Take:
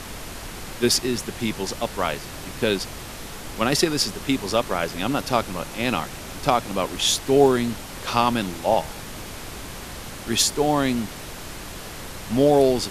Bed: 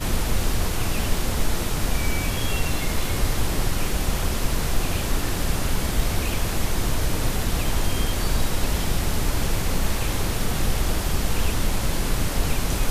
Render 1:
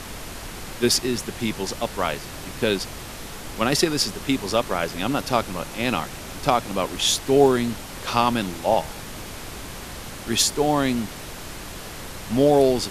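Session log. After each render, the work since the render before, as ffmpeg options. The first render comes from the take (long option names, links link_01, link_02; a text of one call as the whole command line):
ffmpeg -i in.wav -af anull out.wav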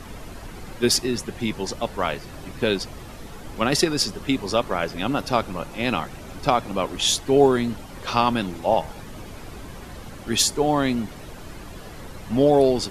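ffmpeg -i in.wav -af "afftdn=noise_reduction=10:noise_floor=-37" out.wav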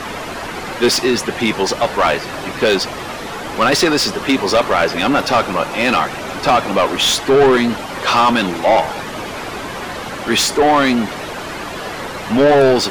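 ffmpeg -i in.wav -filter_complex "[0:a]asplit=2[link_01][link_02];[link_02]highpass=frequency=720:poles=1,volume=26dB,asoftclip=type=tanh:threshold=-3dB[link_03];[link_01][link_03]amix=inputs=2:normalize=0,lowpass=frequency=2900:poles=1,volume=-6dB" out.wav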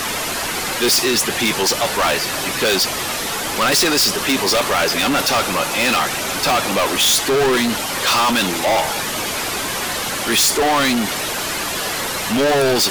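ffmpeg -i in.wav -af "crystalizer=i=4.5:c=0,asoftclip=type=tanh:threshold=-13.5dB" out.wav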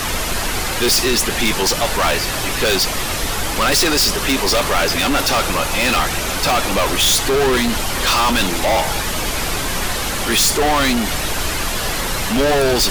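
ffmpeg -i in.wav -i bed.wav -filter_complex "[1:a]volume=-3dB[link_01];[0:a][link_01]amix=inputs=2:normalize=0" out.wav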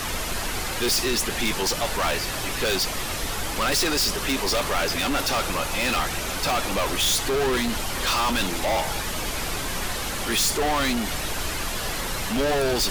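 ffmpeg -i in.wav -af "volume=-7.5dB" out.wav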